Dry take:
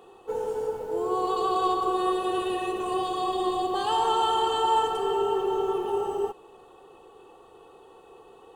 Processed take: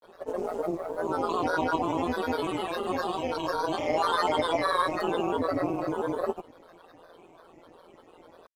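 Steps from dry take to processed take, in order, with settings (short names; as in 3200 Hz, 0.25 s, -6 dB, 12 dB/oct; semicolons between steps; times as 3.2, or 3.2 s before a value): grains, pitch spread up and down by 7 st; AM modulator 170 Hz, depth 60%; gain +2.5 dB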